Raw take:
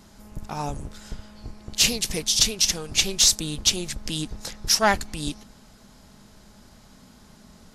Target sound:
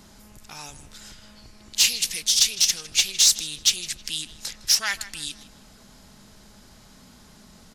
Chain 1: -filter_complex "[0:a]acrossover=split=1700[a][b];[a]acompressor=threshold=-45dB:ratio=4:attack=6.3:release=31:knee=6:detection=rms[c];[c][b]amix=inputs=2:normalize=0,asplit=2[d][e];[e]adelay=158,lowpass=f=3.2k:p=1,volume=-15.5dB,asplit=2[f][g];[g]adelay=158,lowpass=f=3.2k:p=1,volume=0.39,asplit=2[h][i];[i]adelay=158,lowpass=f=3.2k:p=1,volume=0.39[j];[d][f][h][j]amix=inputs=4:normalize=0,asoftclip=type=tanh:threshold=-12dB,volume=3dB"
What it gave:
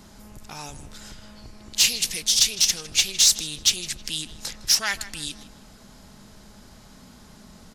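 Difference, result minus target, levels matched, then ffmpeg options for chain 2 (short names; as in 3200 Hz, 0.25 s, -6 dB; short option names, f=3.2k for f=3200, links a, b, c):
compressor: peak gain reduction -5.5 dB
-filter_complex "[0:a]acrossover=split=1700[a][b];[a]acompressor=threshold=-52.5dB:ratio=4:attack=6.3:release=31:knee=6:detection=rms[c];[c][b]amix=inputs=2:normalize=0,asplit=2[d][e];[e]adelay=158,lowpass=f=3.2k:p=1,volume=-15.5dB,asplit=2[f][g];[g]adelay=158,lowpass=f=3.2k:p=1,volume=0.39,asplit=2[h][i];[i]adelay=158,lowpass=f=3.2k:p=1,volume=0.39[j];[d][f][h][j]amix=inputs=4:normalize=0,asoftclip=type=tanh:threshold=-12dB,volume=3dB"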